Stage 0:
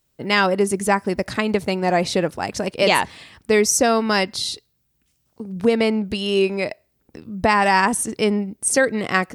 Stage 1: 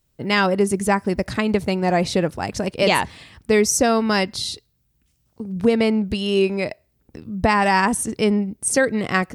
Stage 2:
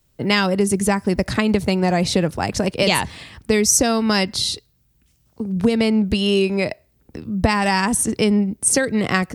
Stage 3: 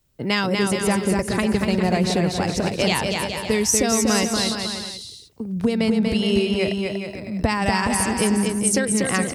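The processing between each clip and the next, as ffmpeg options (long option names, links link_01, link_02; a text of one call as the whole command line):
ffmpeg -i in.wav -af "lowshelf=frequency=160:gain=9.5,volume=-1.5dB" out.wav
ffmpeg -i in.wav -filter_complex "[0:a]acrossover=split=190|3000[link_01][link_02][link_03];[link_02]acompressor=threshold=-22dB:ratio=6[link_04];[link_01][link_04][link_03]amix=inputs=3:normalize=0,volume=5dB" out.wav
ffmpeg -i in.wav -af "aecho=1:1:240|420|555|656.2|732.2:0.631|0.398|0.251|0.158|0.1,volume=-4dB" out.wav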